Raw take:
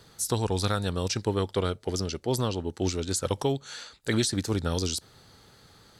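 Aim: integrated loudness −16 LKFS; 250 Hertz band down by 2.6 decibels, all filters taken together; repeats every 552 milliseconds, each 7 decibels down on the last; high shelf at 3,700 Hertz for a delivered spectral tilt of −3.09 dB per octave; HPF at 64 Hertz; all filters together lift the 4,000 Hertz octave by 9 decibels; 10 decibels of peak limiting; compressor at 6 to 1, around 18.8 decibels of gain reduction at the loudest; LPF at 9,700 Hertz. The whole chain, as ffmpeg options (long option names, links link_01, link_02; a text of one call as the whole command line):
ffmpeg -i in.wav -af "highpass=64,lowpass=9700,equalizer=frequency=250:width_type=o:gain=-3.5,highshelf=frequency=3700:gain=9,equalizer=frequency=4000:width_type=o:gain=5,acompressor=threshold=-39dB:ratio=6,alimiter=level_in=6.5dB:limit=-24dB:level=0:latency=1,volume=-6.5dB,aecho=1:1:552|1104|1656|2208|2760:0.447|0.201|0.0905|0.0407|0.0183,volume=26.5dB" out.wav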